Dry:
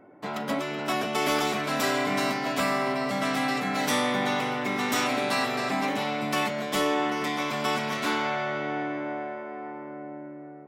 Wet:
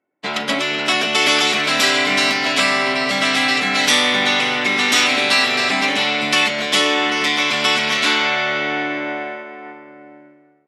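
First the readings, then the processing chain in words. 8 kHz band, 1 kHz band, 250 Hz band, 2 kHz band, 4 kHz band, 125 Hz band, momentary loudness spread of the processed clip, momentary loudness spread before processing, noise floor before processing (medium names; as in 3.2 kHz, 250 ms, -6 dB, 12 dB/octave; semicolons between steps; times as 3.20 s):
+12.5 dB, +6.0 dB, +4.5 dB, +13.5 dB, +17.0 dB, +2.0 dB, 8 LU, 11 LU, -41 dBFS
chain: frequency weighting D; in parallel at +2 dB: compression, threshold -29 dBFS, peak gain reduction 13 dB; on the sum: brick-wall FIR low-pass 12 kHz; expander -23 dBFS; trim +2.5 dB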